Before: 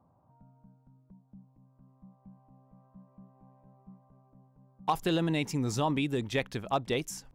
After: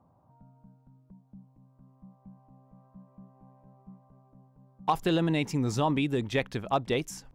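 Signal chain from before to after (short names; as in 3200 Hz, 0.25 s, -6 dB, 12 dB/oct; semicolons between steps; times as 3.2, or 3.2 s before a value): high shelf 4700 Hz -5.5 dB; gain +2.5 dB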